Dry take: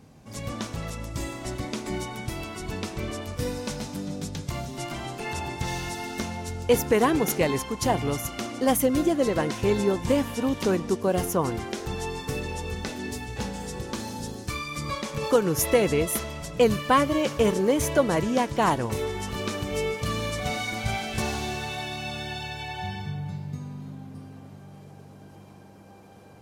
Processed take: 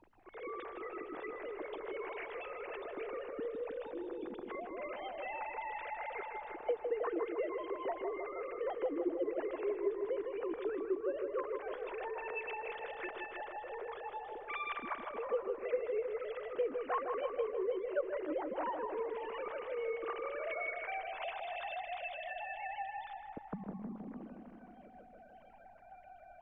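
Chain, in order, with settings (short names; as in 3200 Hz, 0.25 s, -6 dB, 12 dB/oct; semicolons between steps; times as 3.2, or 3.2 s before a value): sine-wave speech; LPF 2300 Hz 12 dB/oct; compressor 2.5:1, threshold -39 dBFS, peak gain reduction 19 dB; added noise brown -69 dBFS; darkening echo 0.157 s, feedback 72%, low-pass 1600 Hz, level -5 dB; gain -2 dB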